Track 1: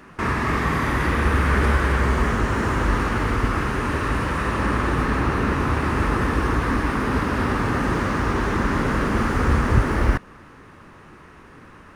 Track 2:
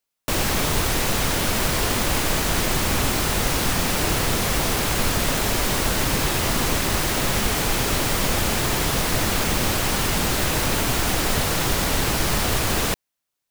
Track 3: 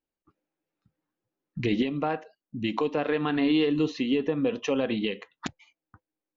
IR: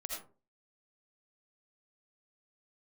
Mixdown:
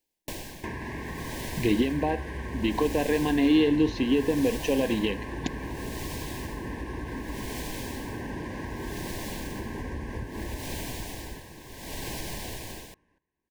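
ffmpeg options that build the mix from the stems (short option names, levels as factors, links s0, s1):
-filter_complex "[0:a]adelay=450,volume=0.596,asplit=2[s0][s1];[s1]volume=0.106[s2];[1:a]aeval=exprs='val(0)*pow(10,-27*(0.5-0.5*cos(2*PI*0.65*n/s))/20)':c=same,volume=0.891[s3];[2:a]volume=1[s4];[s0][s3]amix=inputs=2:normalize=0,acompressor=threshold=0.0251:ratio=12,volume=1[s5];[s2]aecho=0:1:774|1548|2322:1|0.16|0.0256[s6];[s4][s5][s6]amix=inputs=3:normalize=0,asuperstop=centerf=1300:order=20:qfactor=3,equalizer=f=330:w=2.7:g=3.5"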